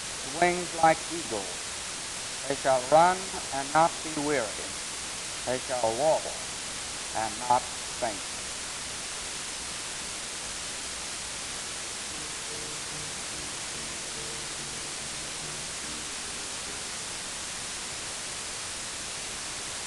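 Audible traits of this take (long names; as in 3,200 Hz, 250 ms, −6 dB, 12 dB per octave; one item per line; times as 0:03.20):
tremolo saw down 2.4 Hz, depth 90%
a quantiser's noise floor 6 bits, dither triangular
AAC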